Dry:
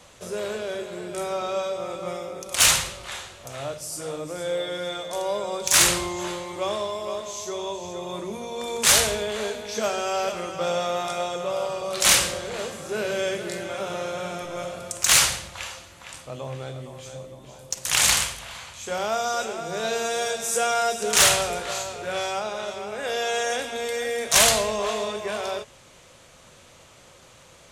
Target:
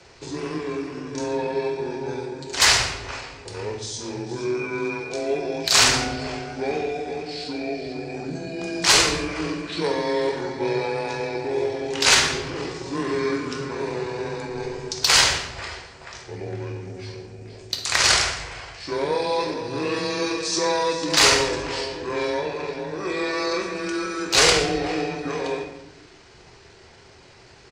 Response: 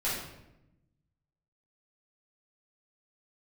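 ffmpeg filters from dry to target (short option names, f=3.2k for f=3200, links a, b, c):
-filter_complex "[0:a]aecho=1:1:121:0.133,afreqshift=21,asetrate=30296,aresample=44100,atempo=1.45565,asplit=2[a][b];[1:a]atrim=start_sample=2205,highshelf=f=9.3k:g=5.5[c];[b][c]afir=irnorm=-1:irlink=0,volume=-9.5dB[d];[a][d]amix=inputs=2:normalize=0,volume=-1dB"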